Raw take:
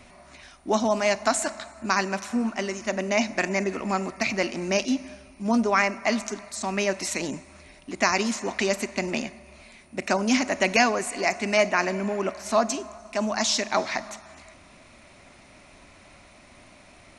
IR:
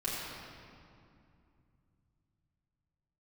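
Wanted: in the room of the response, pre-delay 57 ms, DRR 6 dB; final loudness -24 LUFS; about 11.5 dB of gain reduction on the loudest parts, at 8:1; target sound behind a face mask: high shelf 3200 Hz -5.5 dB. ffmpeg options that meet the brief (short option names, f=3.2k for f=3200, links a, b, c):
-filter_complex "[0:a]acompressor=threshold=-28dB:ratio=8,asplit=2[a][b];[1:a]atrim=start_sample=2205,adelay=57[c];[b][c]afir=irnorm=-1:irlink=0,volume=-11.5dB[d];[a][d]amix=inputs=2:normalize=0,highshelf=f=3.2k:g=-5.5,volume=9dB"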